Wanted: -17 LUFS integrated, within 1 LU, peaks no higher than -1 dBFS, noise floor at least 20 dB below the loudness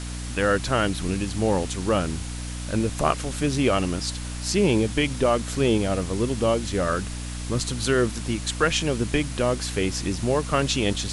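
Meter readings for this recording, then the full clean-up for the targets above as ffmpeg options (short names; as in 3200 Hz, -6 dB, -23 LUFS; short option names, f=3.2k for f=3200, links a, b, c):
hum 60 Hz; harmonics up to 300 Hz; hum level -30 dBFS; noise floor -32 dBFS; noise floor target -45 dBFS; loudness -24.5 LUFS; peak -6.0 dBFS; loudness target -17.0 LUFS
-> -af "bandreject=f=60:t=h:w=4,bandreject=f=120:t=h:w=4,bandreject=f=180:t=h:w=4,bandreject=f=240:t=h:w=4,bandreject=f=300:t=h:w=4"
-af "afftdn=nr=13:nf=-32"
-af "volume=7.5dB,alimiter=limit=-1dB:level=0:latency=1"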